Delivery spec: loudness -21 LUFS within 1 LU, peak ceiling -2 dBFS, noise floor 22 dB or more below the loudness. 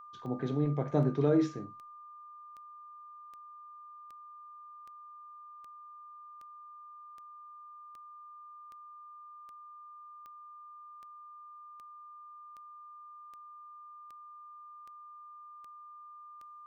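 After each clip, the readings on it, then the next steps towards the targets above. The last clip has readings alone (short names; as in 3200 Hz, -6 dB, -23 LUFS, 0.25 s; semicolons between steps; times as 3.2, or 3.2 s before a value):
clicks 22; steady tone 1200 Hz; tone level -48 dBFS; loudness -31.0 LUFS; peak -16.0 dBFS; loudness target -21.0 LUFS
-> de-click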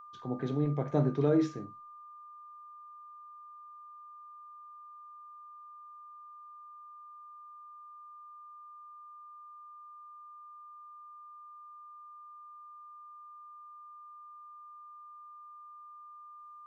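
clicks 0; steady tone 1200 Hz; tone level -48 dBFS
-> notch 1200 Hz, Q 30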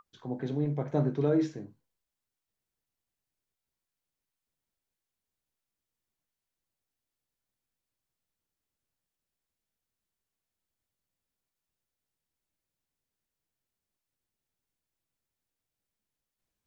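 steady tone none; loudness -30.5 LUFS; peak -16.0 dBFS; loudness target -21.0 LUFS
-> gain +9.5 dB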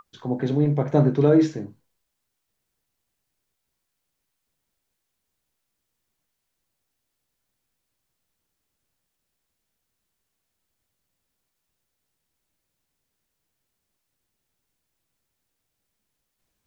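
loudness -21.0 LUFS; peak -6.5 dBFS; noise floor -80 dBFS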